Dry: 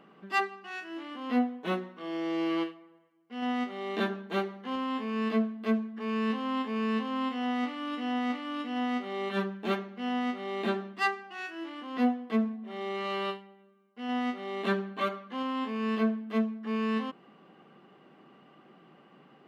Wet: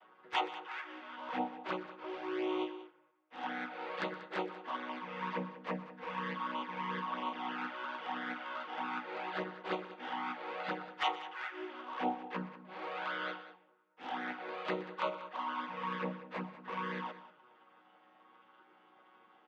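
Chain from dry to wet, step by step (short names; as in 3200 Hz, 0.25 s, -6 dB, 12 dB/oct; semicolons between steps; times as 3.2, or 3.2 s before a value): chord vocoder major triad, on B2; HPF 920 Hz 12 dB/oct; high shelf 5600 Hz -10 dB; envelope flanger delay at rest 10.4 ms, full sweep at -40 dBFS; tapped delay 0.123/0.19 s -17/-15 dB; gain +11 dB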